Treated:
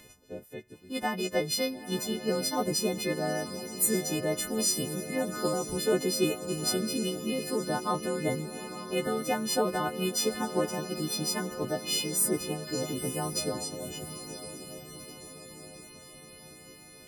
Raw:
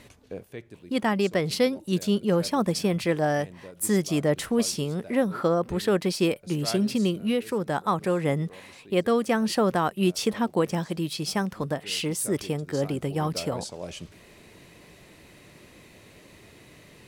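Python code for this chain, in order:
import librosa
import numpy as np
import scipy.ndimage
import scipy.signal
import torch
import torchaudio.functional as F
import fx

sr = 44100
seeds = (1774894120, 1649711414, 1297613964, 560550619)

y = fx.freq_snap(x, sr, grid_st=3)
y = fx.echo_diffused(y, sr, ms=938, feedback_pct=56, wet_db=-10.5)
y = fx.hpss(y, sr, part='harmonic', gain_db=-9)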